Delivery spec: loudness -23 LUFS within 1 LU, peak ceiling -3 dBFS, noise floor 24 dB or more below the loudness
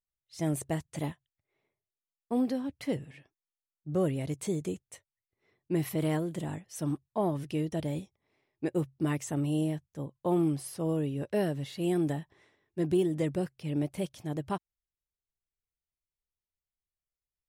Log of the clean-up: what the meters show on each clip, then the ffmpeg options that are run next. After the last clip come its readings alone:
loudness -32.5 LUFS; peak level -17.5 dBFS; loudness target -23.0 LUFS
-> -af "volume=2.99"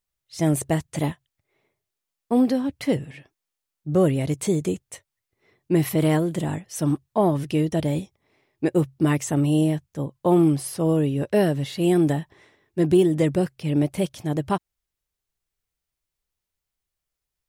loudness -23.0 LUFS; peak level -8.0 dBFS; noise floor -85 dBFS

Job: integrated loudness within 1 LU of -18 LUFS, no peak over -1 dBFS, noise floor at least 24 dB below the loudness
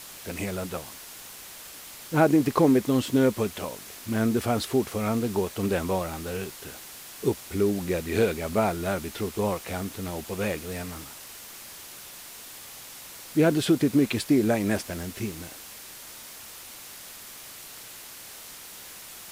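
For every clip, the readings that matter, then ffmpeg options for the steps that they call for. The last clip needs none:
noise floor -44 dBFS; noise floor target -51 dBFS; loudness -26.5 LUFS; peak level -7.5 dBFS; loudness target -18.0 LUFS
-> -af "afftdn=nr=7:nf=-44"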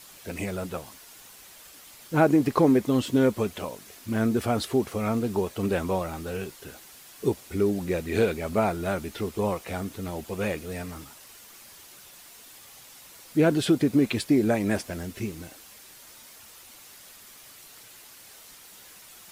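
noise floor -49 dBFS; noise floor target -51 dBFS
-> -af "afftdn=nr=6:nf=-49"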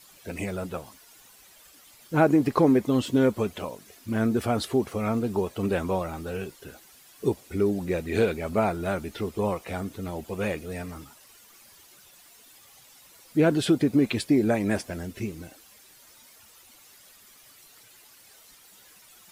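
noise floor -54 dBFS; loudness -26.5 LUFS; peak level -7.5 dBFS; loudness target -18.0 LUFS
-> -af "volume=2.66,alimiter=limit=0.891:level=0:latency=1"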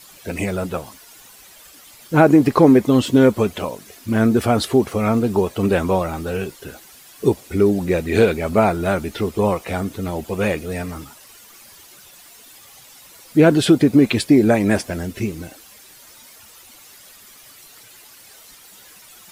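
loudness -18.0 LUFS; peak level -1.0 dBFS; noise floor -46 dBFS

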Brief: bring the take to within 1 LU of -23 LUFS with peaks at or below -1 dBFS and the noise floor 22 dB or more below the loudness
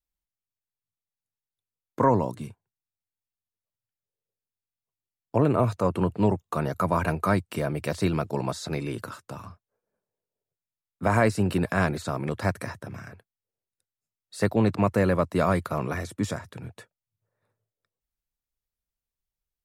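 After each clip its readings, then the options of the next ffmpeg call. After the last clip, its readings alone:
loudness -26.0 LUFS; peak level -9.0 dBFS; loudness target -23.0 LUFS
-> -af "volume=1.41"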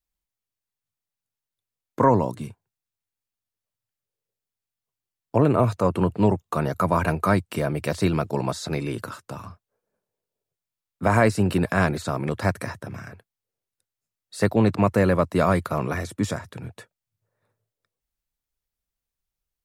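loudness -23.0 LUFS; peak level -6.0 dBFS; noise floor -89 dBFS

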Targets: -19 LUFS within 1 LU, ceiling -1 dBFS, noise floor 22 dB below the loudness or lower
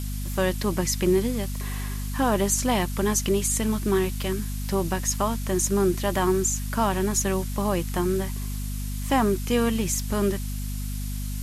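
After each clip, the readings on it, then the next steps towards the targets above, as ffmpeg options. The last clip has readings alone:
hum 50 Hz; highest harmonic 250 Hz; hum level -28 dBFS; noise floor -30 dBFS; noise floor target -48 dBFS; loudness -25.5 LUFS; peak level -10.0 dBFS; loudness target -19.0 LUFS
-> -af "bandreject=f=50:t=h:w=6,bandreject=f=100:t=h:w=6,bandreject=f=150:t=h:w=6,bandreject=f=200:t=h:w=6,bandreject=f=250:t=h:w=6"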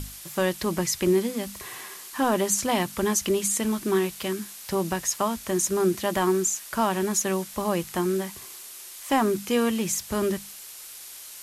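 hum not found; noise floor -43 dBFS; noise floor target -48 dBFS
-> -af "afftdn=nr=6:nf=-43"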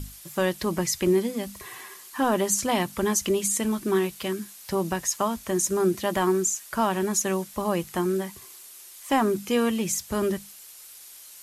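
noise floor -46 dBFS; noise floor target -48 dBFS
-> -af "afftdn=nr=6:nf=-46"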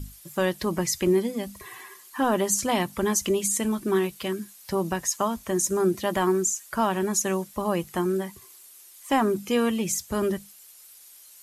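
noise floor -50 dBFS; loudness -25.5 LUFS; peak level -11.0 dBFS; loudness target -19.0 LUFS
-> -af "volume=2.11"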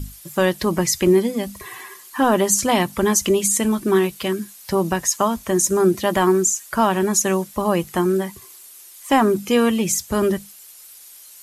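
loudness -19.0 LUFS; peak level -5.0 dBFS; noise floor -44 dBFS

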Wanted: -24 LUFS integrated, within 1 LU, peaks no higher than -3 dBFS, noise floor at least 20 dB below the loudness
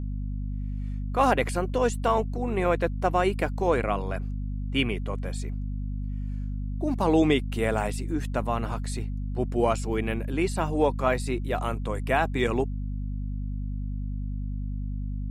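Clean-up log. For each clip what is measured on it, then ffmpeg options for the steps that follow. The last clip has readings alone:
hum 50 Hz; highest harmonic 250 Hz; hum level -28 dBFS; loudness -28.0 LUFS; peak level -9.0 dBFS; loudness target -24.0 LUFS
-> -af "bandreject=f=50:t=h:w=4,bandreject=f=100:t=h:w=4,bandreject=f=150:t=h:w=4,bandreject=f=200:t=h:w=4,bandreject=f=250:t=h:w=4"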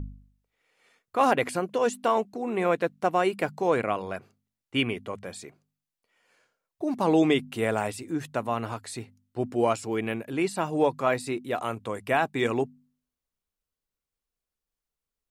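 hum not found; loudness -27.5 LUFS; peak level -10.0 dBFS; loudness target -24.0 LUFS
-> -af "volume=1.5"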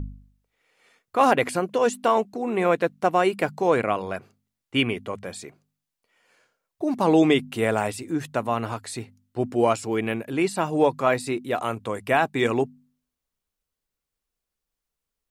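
loudness -24.0 LUFS; peak level -6.5 dBFS; noise floor -85 dBFS

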